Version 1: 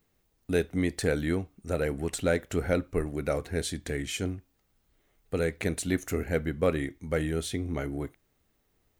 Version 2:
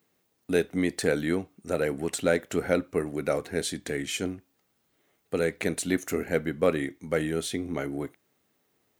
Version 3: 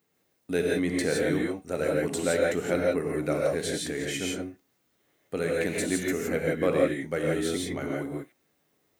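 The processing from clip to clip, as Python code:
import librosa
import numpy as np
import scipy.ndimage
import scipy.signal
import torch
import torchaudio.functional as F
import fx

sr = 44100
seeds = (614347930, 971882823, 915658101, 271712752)

y1 = scipy.signal.sosfilt(scipy.signal.butter(2, 170.0, 'highpass', fs=sr, output='sos'), x)
y1 = F.gain(torch.from_numpy(y1), 2.5).numpy()
y2 = fx.rev_gated(y1, sr, seeds[0], gate_ms=190, shape='rising', drr_db=-2.0)
y2 = F.gain(torch.from_numpy(y2), -3.5).numpy()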